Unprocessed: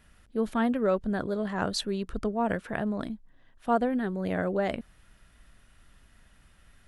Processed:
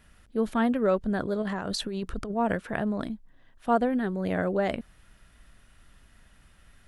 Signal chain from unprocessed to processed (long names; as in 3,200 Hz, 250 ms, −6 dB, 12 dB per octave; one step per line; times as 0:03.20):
0:01.42–0:02.34: compressor whose output falls as the input rises −33 dBFS, ratio −1
level +1.5 dB